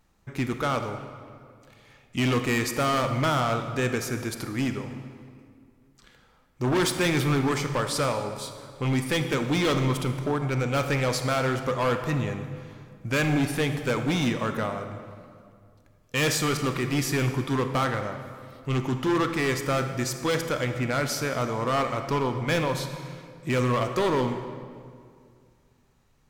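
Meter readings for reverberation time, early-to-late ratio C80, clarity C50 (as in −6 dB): 2.2 s, 9.0 dB, 8.0 dB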